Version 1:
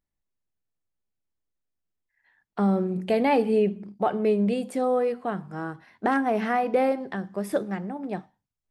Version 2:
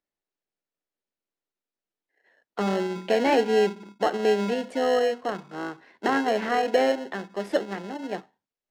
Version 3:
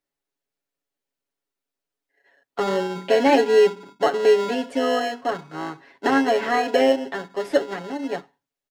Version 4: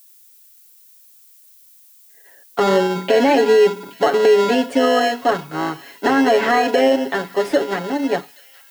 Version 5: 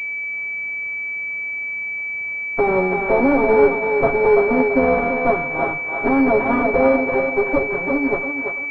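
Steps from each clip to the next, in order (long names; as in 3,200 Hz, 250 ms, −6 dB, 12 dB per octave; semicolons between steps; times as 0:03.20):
in parallel at −4.5 dB: decimation without filtering 37×; on the sum: three-way crossover with the lows and the highs turned down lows −20 dB, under 260 Hz, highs −18 dB, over 6,600 Hz
comb filter 7.2 ms, depth 87%; level +1.5 dB
brickwall limiter −13.5 dBFS, peak gain reduction 9 dB; background noise violet −57 dBFS; delay with a high-pass on its return 825 ms, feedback 52%, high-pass 2,300 Hz, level −18 dB; level +8 dB
lower of the sound and its delayed copy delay 7.5 ms; feedback echo with a high-pass in the loop 335 ms, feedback 47%, high-pass 500 Hz, level −3 dB; switching amplifier with a slow clock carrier 2,300 Hz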